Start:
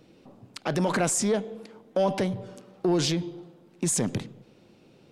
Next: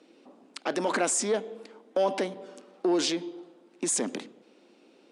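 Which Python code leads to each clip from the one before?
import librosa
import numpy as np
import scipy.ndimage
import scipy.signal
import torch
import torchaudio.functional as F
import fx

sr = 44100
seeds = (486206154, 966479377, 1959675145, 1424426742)

y = scipy.signal.sosfilt(scipy.signal.ellip(3, 1.0, 40, [260.0, 9500.0], 'bandpass', fs=sr, output='sos'), x)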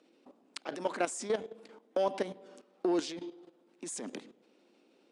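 y = fx.level_steps(x, sr, step_db=13)
y = F.gain(torch.from_numpy(y), -1.5).numpy()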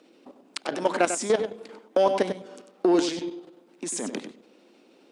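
y = x + 10.0 ** (-9.5 / 20.0) * np.pad(x, (int(96 * sr / 1000.0), 0))[:len(x)]
y = F.gain(torch.from_numpy(y), 9.0).numpy()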